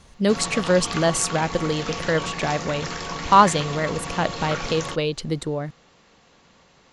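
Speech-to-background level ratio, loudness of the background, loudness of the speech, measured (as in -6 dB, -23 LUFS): 7.5 dB, -30.5 LUFS, -23.0 LUFS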